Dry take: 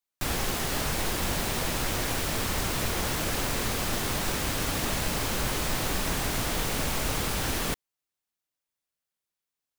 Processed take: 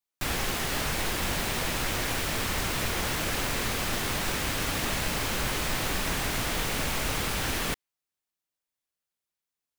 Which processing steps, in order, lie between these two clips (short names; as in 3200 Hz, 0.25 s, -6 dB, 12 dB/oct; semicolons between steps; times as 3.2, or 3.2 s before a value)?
dynamic EQ 2200 Hz, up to +4 dB, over -49 dBFS, Q 0.78; gain -1.5 dB